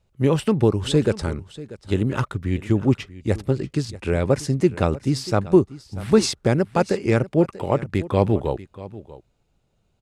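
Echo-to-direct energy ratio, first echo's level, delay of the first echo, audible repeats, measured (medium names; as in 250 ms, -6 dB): -17.5 dB, -17.5 dB, 639 ms, 1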